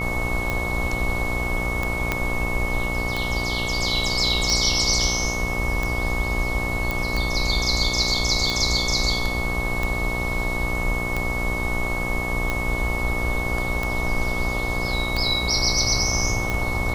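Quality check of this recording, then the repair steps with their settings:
buzz 60 Hz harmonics 21 -29 dBFS
tick 45 rpm -11 dBFS
tone 2200 Hz -27 dBFS
2.12 pop -7 dBFS
6.91 pop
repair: de-click; de-hum 60 Hz, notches 21; notch 2200 Hz, Q 30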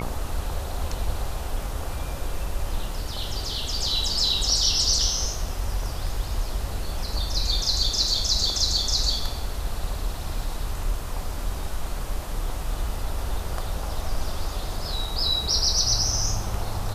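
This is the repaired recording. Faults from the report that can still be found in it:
2.12 pop

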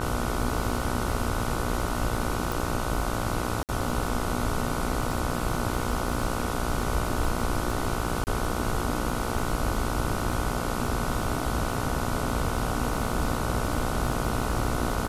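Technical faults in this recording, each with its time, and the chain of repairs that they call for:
buzz 60 Hz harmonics 25 -32 dBFS
crackle 44/s -32 dBFS
2.52 pop
3.63–3.69 gap 58 ms
8.24–8.27 gap 29 ms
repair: de-click; de-hum 60 Hz, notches 25; interpolate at 3.63, 58 ms; interpolate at 8.24, 29 ms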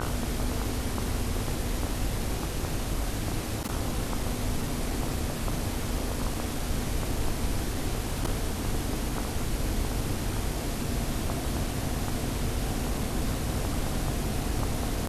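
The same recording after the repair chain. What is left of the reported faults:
2.52 pop

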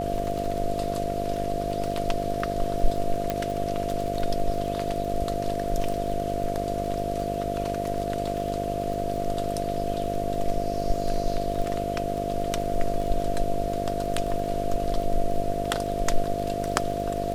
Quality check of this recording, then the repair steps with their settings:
buzz 50 Hz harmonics 14 -31 dBFS
crackle 24/s -30 dBFS
tone 690 Hz -29 dBFS
3.3 pop -12 dBFS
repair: de-click; de-hum 50 Hz, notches 14; notch 690 Hz, Q 30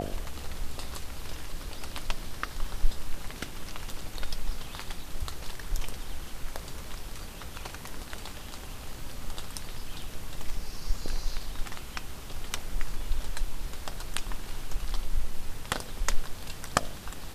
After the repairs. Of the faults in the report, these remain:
none

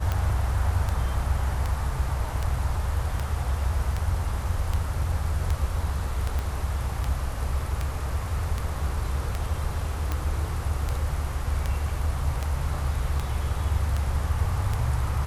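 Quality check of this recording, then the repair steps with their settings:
tick 78 rpm -14 dBFS
6.39 pop -17 dBFS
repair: de-click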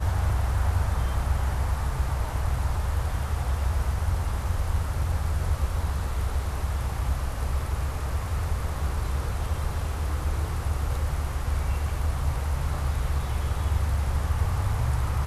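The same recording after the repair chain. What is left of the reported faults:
6.39 pop

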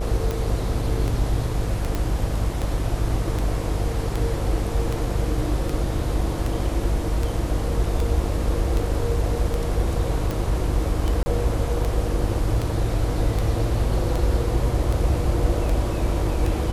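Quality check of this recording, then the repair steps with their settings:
buzz 50 Hz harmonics 27 -26 dBFS
tick 78 rpm
1.95 pop -12 dBFS
11.23–11.26 gap 30 ms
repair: de-click; de-hum 50 Hz, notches 27; interpolate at 11.23, 30 ms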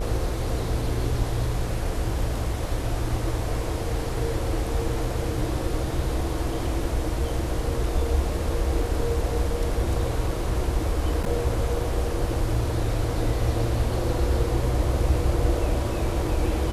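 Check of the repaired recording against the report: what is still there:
none

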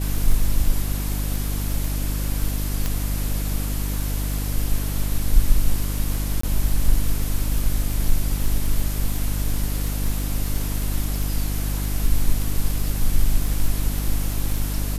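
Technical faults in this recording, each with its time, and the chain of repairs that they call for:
crackle 25/s -24 dBFS
hum 50 Hz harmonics 6 -25 dBFS
2.86 pop -9 dBFS
6.41–6.43 gap 24 ms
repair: de-click; de-hum 50 Hz, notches 6; interpolate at 6.41, 24 ms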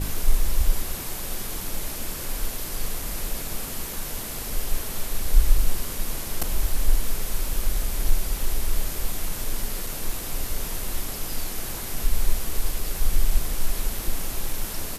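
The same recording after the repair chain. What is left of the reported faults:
none

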